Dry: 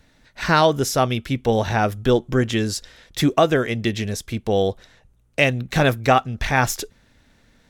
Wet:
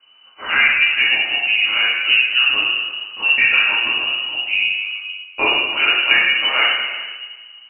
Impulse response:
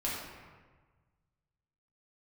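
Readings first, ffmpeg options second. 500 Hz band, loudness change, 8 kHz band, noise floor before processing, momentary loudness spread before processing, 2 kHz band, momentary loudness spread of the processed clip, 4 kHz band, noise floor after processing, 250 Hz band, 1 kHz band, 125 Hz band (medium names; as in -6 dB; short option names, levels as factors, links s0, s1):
-13.5 dB, +6.0 dB, under -40 dB, -58 dBFS, 11 LU, +12.0 dB, 12 LU, +14.5 dB, -46 dBFS, -16.5 dB, -5.0 dB, under -25 dB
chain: -filter_complex "[1:a]atrim=start_sample=2205[s0];[0:a][s0]afir=irnorm=-1:irlink=0,lowpass=f=2600:t=q:w=0.5098,lowpass=f=2600:t=q:w=0.6013,lowpass=f=2600:t=q:w=0.9,lowpass=f=2600:t=q:w=2.563,afreqshift=-3000,volume=0.708"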